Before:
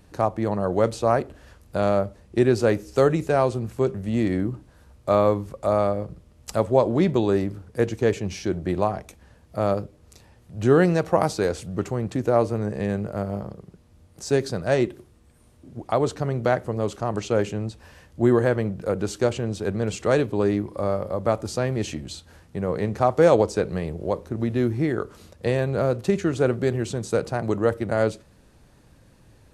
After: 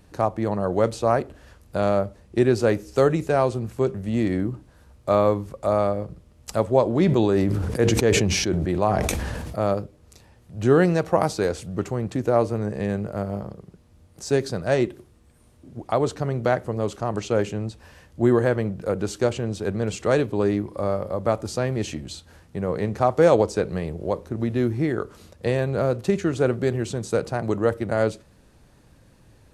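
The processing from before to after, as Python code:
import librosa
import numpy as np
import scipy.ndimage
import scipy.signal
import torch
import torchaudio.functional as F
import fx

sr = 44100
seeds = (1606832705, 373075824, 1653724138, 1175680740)

y = fx.sustainer(x, sr, db_per_s=23.0, at=(6.93, 9.58))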